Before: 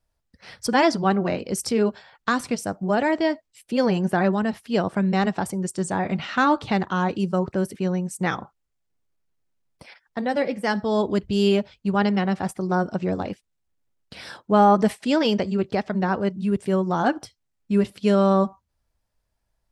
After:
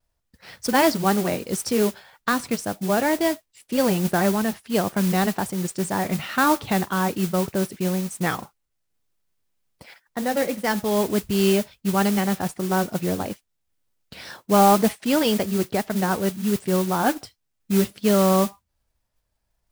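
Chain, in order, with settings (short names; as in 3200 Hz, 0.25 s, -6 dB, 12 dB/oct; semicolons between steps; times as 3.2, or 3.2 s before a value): vibrato 1.9 Hz 54 cents; modulation noise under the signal 13 dB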